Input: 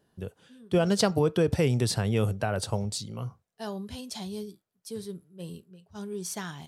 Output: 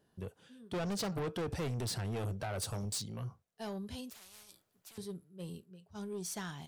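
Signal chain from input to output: 2.58–3.02 high shelf 6300 Hz +11 dB; soft clip -30 dBFS, distortion -5 dB; 4.1–4.98 spectral compressor 10:1; gain -3.5 dB

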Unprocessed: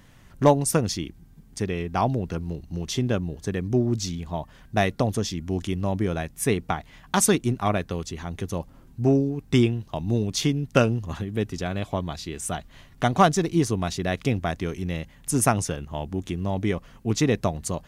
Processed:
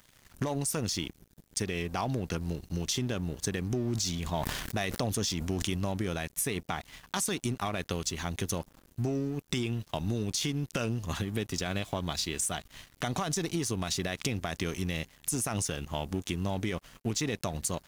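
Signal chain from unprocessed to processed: high shelf 2100 Hz +11.5 dB; limiter -16 dBFS, peak gain reduction 16.5 dB; compressor 6:1, threshold -27 dBFS, peak gain reduction 7 dB; crossover distortion -48 dBFS; 3.74–5.85 sustainer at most 32 dB/s

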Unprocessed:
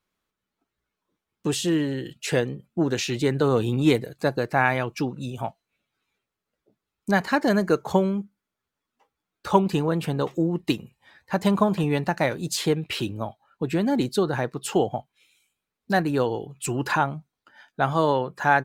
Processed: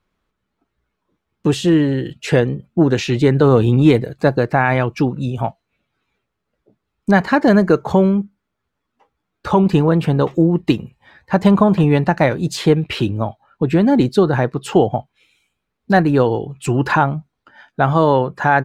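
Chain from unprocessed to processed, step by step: LPF 2400 Hz 6 dB/oct; low shelf 110 Hz +7.5 dB; maximiser +9.5 dB; gain -1 dB

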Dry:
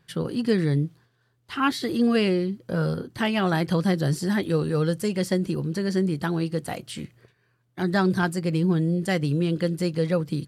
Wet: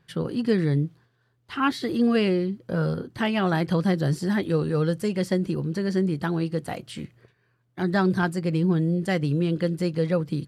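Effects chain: high shelf 4800 Hz -7 dB

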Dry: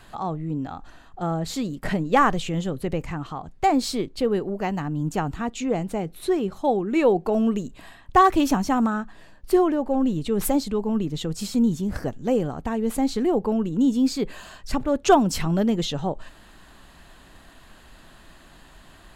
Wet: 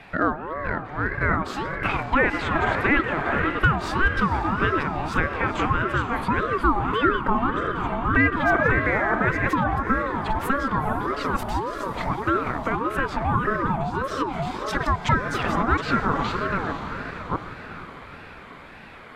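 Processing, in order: reverse delay 0.643 s, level -4 dB; 8.3–8.86 level quantiser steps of 22 dB; 11.43–12.26 dispersion highs, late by 56 ms, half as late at 530 Hz; 14.42–14.87 resonant high shelf 2800 Hz +10 dB, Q 1.5; diffused feedback echo 0.464 s, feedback 53%, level -11 dB; on a send at -18 dB: reverb RT60 1.0 s, pre-delay 96 ms; on the sum: compressor 10:1, threshold -21 dBFS, peak gain reduction 12 dB; three-band isolator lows -17 dB, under 450 Hz, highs -21 dB, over 2500 Hz; maximiser +18 dB; ring modulator with a swept carrier 640 Hz, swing 35%, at 1.7 Hz; gain -6 dB

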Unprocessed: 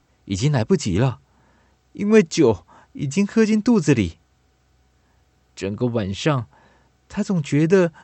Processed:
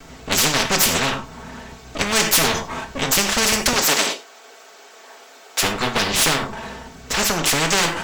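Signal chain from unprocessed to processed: minimum comb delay 4.5 ms; 3.73–5.63 HPF 410 Hz 24 dB/oct; non-linear reverb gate 0.13 s falling, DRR 6.5 dB; in parallel at -11 dB: hard clip -16 dBFS, distortion -9 dB; on the sum: spectral compressor 4:1; gain +1.5 dB

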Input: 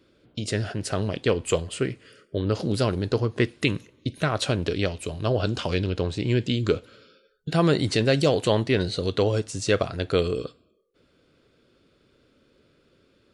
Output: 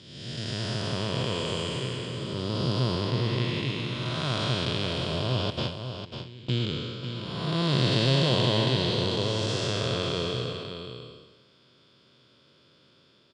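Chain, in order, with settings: time blur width 0.525 s; 5.5–6.6 gate with hold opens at -17 dBFS; in parallel at -10 dB: soft clip -30.5 dBFS, distortion -8 dB; on the sum: speaker cabinet 120–9400 Hz, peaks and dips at 130 Hz +7 dB, 290 Hz -5 dB, 460 Hz -5 dB, 980 Hz +8 dB, 3300 Hz +10 dB, 5000 Hz +10 dB; notch 810 Hz, Q 15; on a send: echo 0.547 s -8.5 dB

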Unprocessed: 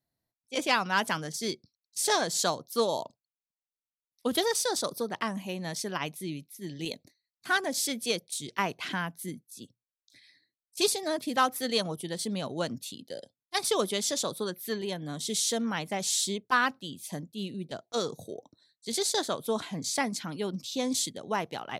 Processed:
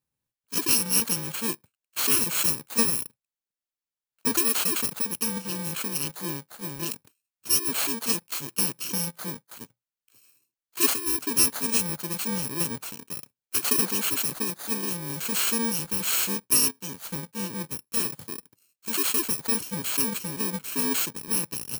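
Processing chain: FFT order left unsorted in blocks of 64 samples; in parallel at -5 dB: bit-crush 7-bit

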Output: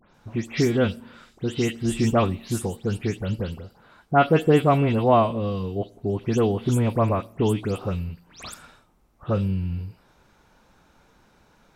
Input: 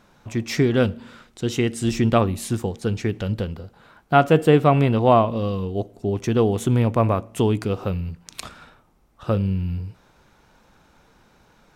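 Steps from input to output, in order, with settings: spectral delay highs late, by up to 0.138 s; gain -2 dB

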